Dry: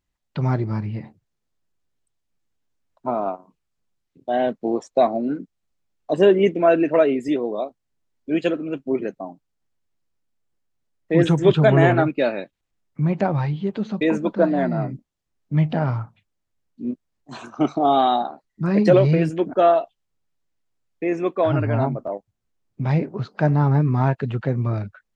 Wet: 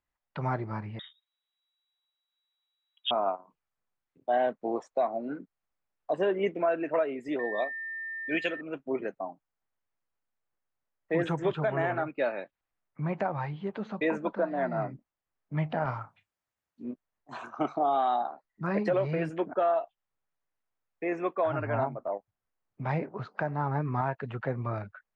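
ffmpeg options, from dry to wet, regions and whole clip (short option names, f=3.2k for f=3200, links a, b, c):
-filter_complex "[0:a]asettb=1/sr,asplit=3[a][b][c];[a]atrim=end=0.994[d];[b]atrim=start=0.99:end=3.11,asetpts=PTS-STARTPTS,afade=t=in:d=0.004:c=qsin,afade=t=out:st=2.116:d=0.004:c=qsin,equalizer=f=550:w=1.4:g=6,lowpass=f=3.3k:t=q:w=0.5098,lowpass=f=3.3k:t=q:w=0.6013,lowpass=f=3.3k:t=q:w=0.9,lowpass=f=3.3k:t=q:w=2.563,afreqshift=-3900[e];[c]atrim=start=3.106[f];[d][e]acrossfade=d=0.004:c1=hsin:c2=qsin[g];[g][f]acrossfade=d=0.004:c1=qsin:c2=hsin,asettb=1/sr,asplit=3[h][i][j];[h]atrim=end=7.394[k];[i]atrim=start=7.39:end=8.61,asetpts=PTS-STARTPTS,afade=t=in:d=0.004:c=qsin,afade=t=out:st=1.216:d=0.004:c=qsin,highshelf=f=1.6k:t=q:w=1.5:g=8.5,aeval=exprs='val(0)+0.0251*sin(2*PI*1800*n/s)':c=same[l];[j]atrim=start=8.606[m];[k][l]acrossfade=d=0.004:c1=hsin:c2=qsin[n];[n][m]acrossfade=d=0.004:c1=qsin:c2=hsin,asettb=1/sr,asplit=3[o][p][q];[o]atrim=end=15.854[r];[p]atrim=start=15.85:end=16.83,asetpts=PTS-STARTPTS,afade=t=in:d=0.004:c=qsin,afade=t=out:st=0.976:d=0.004:c=qsin,highpass=40,highshelf=f=3.2k:g=9.5,asplit=2[s][t];[t]adelay=30,volume=-13.5dB[u];[s][u]amix=inputs=2:normalize=0,atrim=end_sample=43218[v];[q]atrim=start=16.826[w];[r][v]acrossfade=d=0.004:c1=hsin:c2=qsin[x];[x][w]acrossfade=d=0.004:c1=qsin:c2=hsin,acrossover=split=580 2200:gain=0.251 1 0.2[y][z][aa];[y][z][aa]amix=inputs=3:normalize=0,alimiter=limit=-18dB:level=0:latency=1:release=360"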